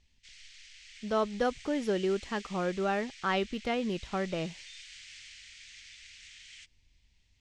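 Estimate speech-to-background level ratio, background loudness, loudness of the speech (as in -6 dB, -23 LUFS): 16.0 dB, -48.5 LUFS, -32.5 LUFS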